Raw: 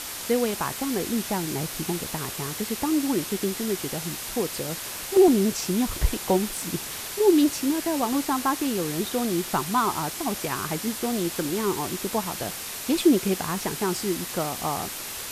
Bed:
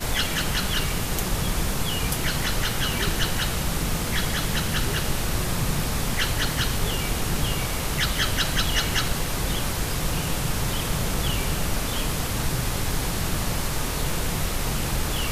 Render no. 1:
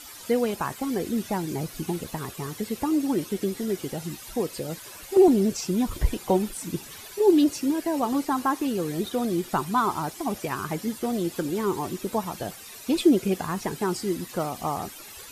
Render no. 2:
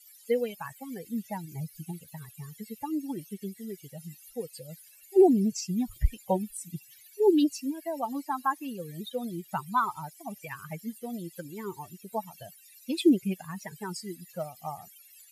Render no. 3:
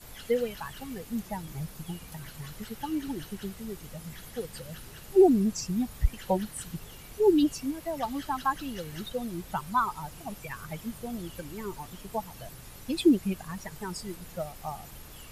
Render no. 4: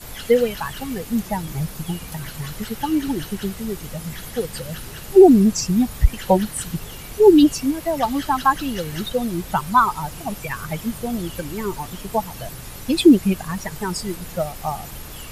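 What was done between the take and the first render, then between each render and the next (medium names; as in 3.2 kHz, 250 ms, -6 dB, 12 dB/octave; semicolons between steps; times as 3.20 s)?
noise reduction 13 dB, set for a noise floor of -35 dBFS
expander on every frequency bin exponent 2
add bed -22 dB
trim +11 dB; peak limiter -2 dBFS, peak gain reduction 2.5 dB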